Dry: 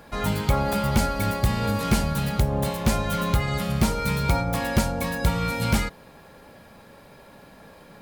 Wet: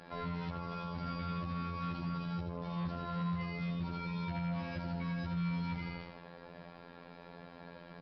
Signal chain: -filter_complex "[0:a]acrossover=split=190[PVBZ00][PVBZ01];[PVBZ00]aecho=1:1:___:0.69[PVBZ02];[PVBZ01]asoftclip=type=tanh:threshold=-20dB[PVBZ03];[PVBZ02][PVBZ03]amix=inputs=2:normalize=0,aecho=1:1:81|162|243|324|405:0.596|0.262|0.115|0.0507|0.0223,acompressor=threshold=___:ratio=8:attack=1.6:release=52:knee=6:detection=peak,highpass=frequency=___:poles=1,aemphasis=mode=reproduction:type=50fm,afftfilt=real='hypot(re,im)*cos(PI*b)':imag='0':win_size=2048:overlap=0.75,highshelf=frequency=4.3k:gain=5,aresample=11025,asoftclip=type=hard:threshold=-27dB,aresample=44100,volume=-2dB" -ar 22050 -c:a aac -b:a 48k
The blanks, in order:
6.1, -27dB, 44